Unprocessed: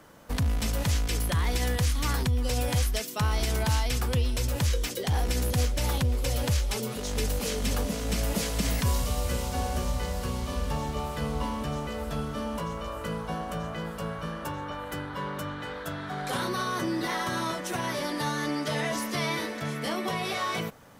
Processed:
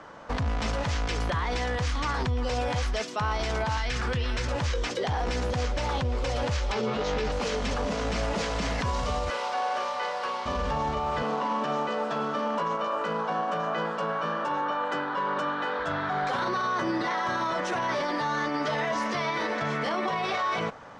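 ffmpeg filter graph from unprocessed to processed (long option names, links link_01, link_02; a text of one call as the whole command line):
ffmpeg -i in.wav -filter_complex "[0:a]asettb=1/sr,asplit=3[link_01][link_02][link_03];[link_01]atrim=end=3.774[link_04];[link_02]atrim=start=3.77:end=4.48,asetpts=PTS-STARTPTS,afade=type=in:duration=0.004:curve=qsin,afade=type=out:start_time=0.706:duration=0.004:curve=qsin,equalizer=frequency=1700:width=1.2:gain=12,acrossover=split=410|3000[link_05][link_06][link_07];[link_06]acompressor=threshold=-38dB:ratio=6:attack=3.2:release=140:knee=2.83:detection=peak[link_08];[link_05][link_08][link_07]amix=inputs=3:normalize=0,asplit=2[link_09][link_10];[link_10]adelay=22,volume=-13dB[link_11];[link_09][link_11]amix=inputs=2:normalize=0,atrim=end_sample=31311[link_12];[link_03]atrim=start=4.476[link_13];[link_04][link_12]acrossfade=duration=0.004:curve1=hsin:curve2=qsin[link_14];[link_14][link_13]acrossfade=duration=0.004:curve1=qsin:curve2=hsin,asettb=1/sr,asplit=3[link_15][link_16][link_17];[link_15]atrim=end=6.724[link_18];[link_16]atrim=start=6.72:end=7.32,asetpts=PTS-STARTPTS,afade=type=in:duration=0.004:curve=qsin,afade=type=out:start_time=0.596:duration=0.004:curve=qsin,lowpass=4900,asplit=2[link_19][link_20];[link_20]adelay=14,volume=-2.5dB[link_21];[link_19][link_21]amix=inputs=2:normalize=0,atrim=end_sample=26460[link_22];[link_17]atrim=start=7.316[link_23];[link_18][link_22]acrossfade=duration=0.004:curve1=hsin:curve2=qsin[link_24];[link_24][link_23]acrossfade=duration=0.004:curve1=qsin:curve2=hsin,asettb=1/sr,asplit=3[link_25][link_26][link_27];[link_25]atrim=end=9.304[link_28];[link_26]atrim=start=9.3:end=10.46,asetpts=PTS-STARTPTS,afade=type=in:duration=0.004:curve=qsin,afade=type=out:start_time=1.156:duration=0.004:curve=qsin,highpass=630,equalizer=frequency=7100:width_type=o:width=0.6:gain=-6.5[link_29];[link_27]atrim=start=10.456[link_30];[link_28][link_29]acrossfade=duration=0.004:curve1=hsin:curve2=qsin[link_31];[link_31][link_30]acrossfade=duration=0.004:curve1=qsin:curve2=hsin,asettb=1/sr,asplit=3[link_32][link_33][link_34];[link_32]atrim=end=11.224[link_35];[link_33]atrim=start=11.22:end=15.79,asetpts=PTS-STARTPTS,afade=type=in:duration=0.004:curve=qsin,afade=type=out:start_time=4.566:duration=0.004:curve=qsin,bandreject=frequency=2100:width=10,volume=26.5dB,asoftclip=hard,volume=-26.5dB,highpass=frequency=180:width=0.5412,highpass=frequency=180:width=1.3066[link_36];[link_34]atrim=start=15.786[link_37];[link_35][link_36]acrossfade=duration=0.004:curve1=hsin:curve2=qsin[link_38];[link_38][link_37]acrossfade=duration=0.004:curve1=qsin:curve2=hsin,lowpass=frequency=6500:width=0.5412,lowpass=frequency=6500:width=1.3066,equalizer=frequency=1000:width=0.5:gain=11,alimiter=limit=-20.5dB:level=0:latency=1:release=23" out.wav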